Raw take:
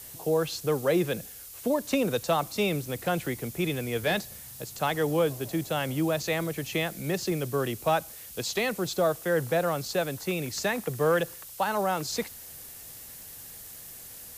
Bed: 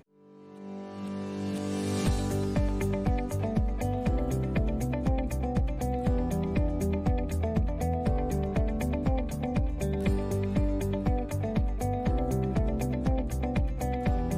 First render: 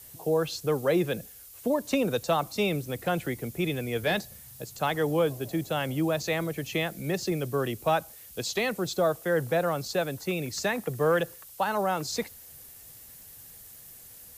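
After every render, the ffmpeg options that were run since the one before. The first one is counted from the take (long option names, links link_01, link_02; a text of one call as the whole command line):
ffmpeg -i in.wav -af "afftdn=noise_reduction=6:noise_floor=-45" out.wav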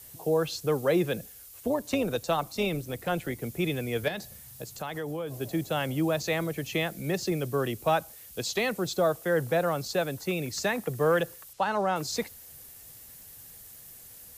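ffmpeg -i in.wav -filter_complex "[0:a]asettb=1/sr,asplit=3[link_01][link_02][link_03];[link_01]atrim=end=1.604[link_04];[link_02]atrim=start=1.6:end=3.42,asetpts=PTS-STARTPTS,afade=type=in:duration=0.004:curve=qsin,afade=type=out:start_time=1.816:duration=0.004:curve=qsin,tremolo=f=170:d=0.4[link_05];[link_03]atrim=start=3.416[link_06];[link_04][link_05]acrossfade=duration=0.004:curve1=hsin:curve2=qsin[link_07];[link_07][link_06]acrossfade=duration=0.004:curve1=qsin:curve2=hsin,asettb=1/sr,asplit=3[link_08][link_09][link_10];[link_08]atrim=end=4.084[link_11];[link_09]atrim=start=4.08:end=5.4,asetpts=PTS-STARTPTS,afade=type=in:duration=0.004:curve=qsin,afade=type=out:start_time=1.316:duration=0.004:curve=qsin,acompressor=threshold=-31dB:ratio=5:attack=3.2:release=140:knee=1:detection=peak[link_12];[link_10]atrim=start=5.396[link_13];[link_11][link_12]acrossfade=duration=0.004:curve1=hsin:curve2=qsin[link_14];[link_14][link_13]acrossfade=duration=0.004:curve1=qsin:curve2=hsin,asettb=1/sr,asplit=3[link_15][link_16][link_17];[link_15]atrim=end=11.534[link_18];[link_16]atrim=start=11.53:end=11.96,asetpts=PTS-STARTPTS,afade=type=in:duration=0.004:curve=qsin,afade=type=out:start_time=0.426:duration=0.004:curve=qsin,lowpass=6500[link_19];[link_17]atrim=start=11.956[link_20];[link_18][link_19]acrossfade=duration=0.004:curve1=hsin:curve2=qsin[link_21];[link_21][link_20]acrossfade=duration=0.004:curve1=qsin:curve2=hsin" out.wav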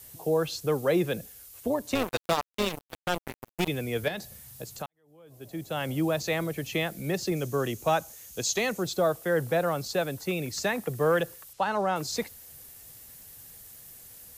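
ffmpeg -i in.wav -filter_complex "[0:a]asettb=1/sr,asplit=3[link_01][link_02][link_03];[link_01]atrim=end=1.954[link_04];[link_02]atrim=start=1.95:end=3.68,asetpts=PTS-STARTPTS,afade=type=in:duration=0.004:curve=qsin,afade=type=out:start_time=1.726:duration=0.004:curve=qsin,acrusher=bits=3:mix=0:aa=0.5[link_05];[link_03]atrim=start=3.676[link_06];[link_04][link_05]acrossfade=duration=0.004:curve1=hsin:curve2=qsin[link_07];[link_07][link_06]acrossfade=duration=0.004:curve1=qsin:curve2=hsin,asettb=1/sr,asplit=3[link_08][link_09][link_10];[link_08]atrim=end=7.364[link_11];[link_09]atrim=start=7.36:end=8.83,asetpts=PTS-STARTPTS,afade=type=in:duration=0.004:curve=qsin,afade=type=out:start_time=1.466:duration=0.004:curve=qsin,equalizer=frequency=6500:width=3.7:gain=10[link_12];[link_10]atrim=start=8.826[link_13];[link_11][link_12]acrossfade=duration=0.004:curve1=hsin:curve2=qsin[link_14];[link_14][link_13]acrossfade=duration=0.004:curve1=qsin:curve2=hsin,asplit=2[link_15][link_16];[link_15]atrim=end=4.86,asetpts=PTS-STARTPTS,afade=type=out:start_time=4.856:duration=0.004:curve=hsin[link_17];[link_16]atrim=start=4.86,asetpts=PTS-STARTPTS,afade=type=in:duration=1.05:curve=qua[link_18];[link_17][link_18]concat=n=2:v=0:a=1" out.wav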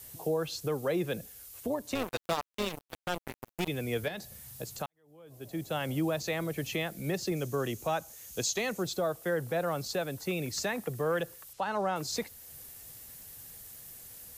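ffmpeg -i in.wav -af "alimiter=limit=-22dB:level=0:latency=1:release=384" out.wav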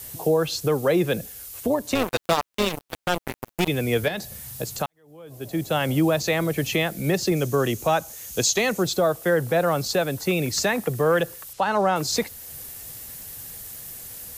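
ffmpeg -i in.wav -af "volume=10dB" out.wav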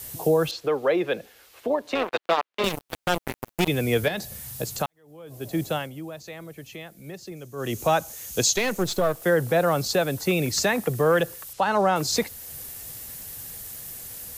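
ffmpeg -i in.wav -filter_complex "[0:a]asettb=1/sr,asplit=3[link_01][link_02][link_03];[link_01]atrim=end=0.514[link_04];[link_02]atrim=start=0.51:end=2.64,asetpts=PTS-STARTPTS,afade=type=in:duration=0.004:curve=qsin,afade=type=out:start_time=2.126:duration=0.004:curve=qsin,acrossover=split=300 4100:gain=0.141 1 0.112[link_05][link_06][link_07];[link_05][link_06][link_07]amix=inputs=3:normalize=0[link_08];[link_03]atrim=start=2.636[link_09];[link_04][link_08]acrossfade=duration=0.004:curve1=hsin:curve2=qsin[link_10];[link_10][link_09]acrossfade=duration=0.004:curve1=qsin:curve2=hsin,asettb=1/sr,asplit=3[link_11][link_12][link_13];[link_11]atrim=end=8.564[link_14];[link_12]atrim=start=8.56:end=9.22,asetpts=PTS-STARTPTS,afade=type=in:duration=0.004:curve=qsin,afade=type=out:start_time=0.656:duration=0.004:curve=qsin,aeval=exprs='if(lt(val(0),0),0.447*val(0),val(0))':channel_layout=same[link_15];[link_13]atrim=start=9.216[link_16];[link_14][link_15]acrossfade=duration=0.004:curve1=hsin:curve2=qsin[link_17];[link_17][link_16]acrossfade=duration=0.004:curve1=qsin:curve2=hsin,asplit=3[link_18][link_19][link_20];[link_18]atrim=end=5.9,asetpts=PTS-STARTPTS,afade=type=out:start_time=5.64:duration=0.26:silence=0.149624[link_21];[link_19]atrim=start=5.9:end=7.55,asetpts=PTS-STARTPTS,volume=-16.5dB[link_22];[link_20]atrim=start=7.55,asetpts=PTS-STARTPTS,afade=type=in:duration=0.26:silence=0.149624[link_23];[link_21][link_22][link_23]concat=n=3:v=0:a=1" out.wav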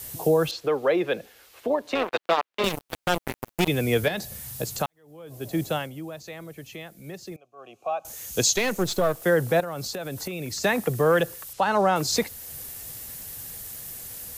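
ffmpeg -i in.wav -filter_complex "[0:a]asettb=1/sr,asplit=3[link_01][link_02][link_03];[link_01]atrim=end=7.364[link_04];[link_02]atrim=start=7.36:end=8.05,asetpts=PTS-STARTPTS,afade=type=in:duration=0.004:curve=qsin,afade=type=out:start_time=0.686:duration=0.004:curve=qsin,asplit=3[link_05][link_06][link_07];[link_05]bandpass=frequency=730:width_type=q:width=8,volume=0dB[link_08];[link_06]bandpass=frequency=1090:width_type=q:width=8,volume=-6dB[link_09];[link_07]bandpass=frequency=2440:width_type=q:width=8,volume=-9dB[link_10];[link_08][link_09][link_10]amix=inputs=3:normalize=0[link_11];[link_03]atrim=start=8.046[link_12];[link_04][link_11]acrossfade=duration=0.004:curve1=hsin:curve2=qsin[link_13];[link_13][link_12]acrossfade=duration=0.004:curve1=qsin:curve2=hsin,asettb=1/sr,asplit=3[link_14][link_15][link_16];[link_14]atrim=end=9.604[link_17];[link_15]atrim=start=9.6:end=10.64,asetpts=PTS-STARTPTS,afade=type=in:duration=0.004:curve=qsin,afade=type=out:start_time=1.036:duration=0.004:curve=qsin,acompressor=threshold=-28dB:ratio=16:attack=3.2:release=140:knee=1:detection=peak[link_18];[link_16]atrim=start=10.636[link_19];[link_17][link_18]acrossfade=duration=0.004:curve1=hsin:curve2=qsin[link_20];[link_20][link_19]acrossfade=duration=0.004:curve1=qsin:curve2=hsin" out.wav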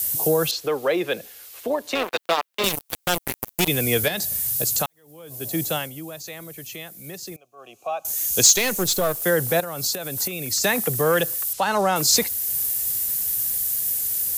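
ffmpeg -i in.wav -af "crystalizer=i=3:c=0,asoftclip=type=tanh:threshold=-5.5dB" out.wav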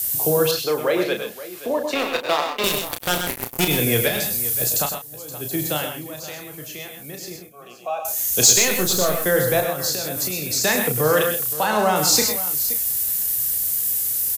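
ffmpeg -i in.wav -filter_complex "[0:a]asplit=2[link_01][link_02];[link_02]adelay=33,volume=-6.5dB[link_03];[link_01][link_03]amix=inputs=2:normalize=0,aecho=1:1:102|125|523:0.355|0.376|0.168" out.wav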